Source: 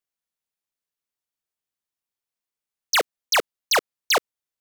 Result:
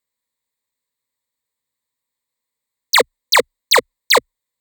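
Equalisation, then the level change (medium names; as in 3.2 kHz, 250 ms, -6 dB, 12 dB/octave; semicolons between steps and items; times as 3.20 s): rippled EQ curve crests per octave 1, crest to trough 12 dB; +5.5 dB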